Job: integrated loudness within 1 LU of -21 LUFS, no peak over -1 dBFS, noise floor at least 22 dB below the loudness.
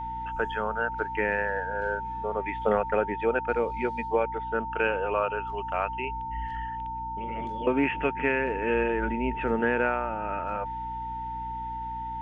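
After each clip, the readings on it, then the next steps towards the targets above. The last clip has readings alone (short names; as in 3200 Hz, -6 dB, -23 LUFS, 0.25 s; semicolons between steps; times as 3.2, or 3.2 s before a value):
hum 60 Hz; harmonics up to 300 Hz; hum level -40 dBFS; steady tone 900 Hz; tone level -32 dBFS; loudness -29.0 LUFS; peak -11.0 dBFS; loudness target -21.0 LUFS
-> notches 60/120/180/240/300 Hz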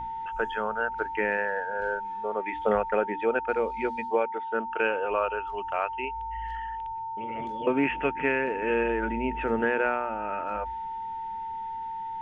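hum none; steady tone 900 Hz; tone level -32 dBFS
-> notch 900 Hz, Q 30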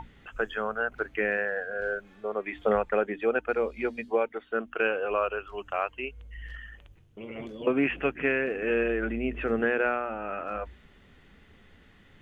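steady tone none; loudness -29.5 LUFS; peak -11.5 dBFS; loudness target -21.0 LUFS
-> gain +8.5 dB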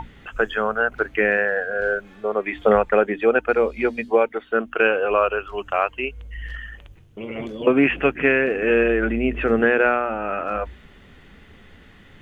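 loudness -21.0 LUFS; peak -3.0 dBFS; noise floor -49 dBFS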